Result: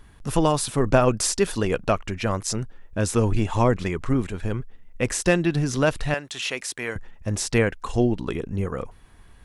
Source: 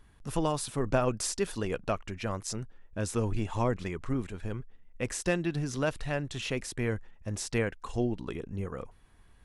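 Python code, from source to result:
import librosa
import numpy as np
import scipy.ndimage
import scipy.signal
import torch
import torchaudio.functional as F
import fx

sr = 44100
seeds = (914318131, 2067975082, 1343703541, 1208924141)

y = fx.highpass(x, sr, hz=1100.0, slope=6, at=(6.14, 6.96))
y = y * 10.0 ** (9.0 / 20.0)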